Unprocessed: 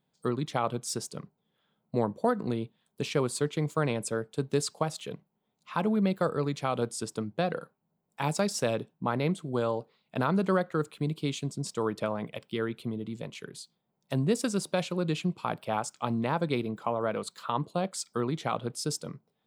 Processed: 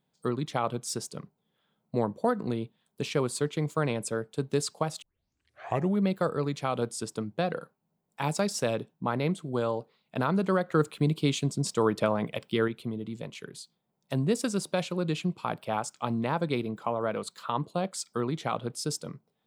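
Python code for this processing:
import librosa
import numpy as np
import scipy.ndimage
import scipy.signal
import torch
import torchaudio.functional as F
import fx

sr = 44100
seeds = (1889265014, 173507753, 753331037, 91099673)

y = fx.edit(x, sr, fx.tape_start(start_s=5.02, length_s=0.99),
    fx.clip_gain(start_s=10.69, length_s=1.99, db=5.0), tone=tone)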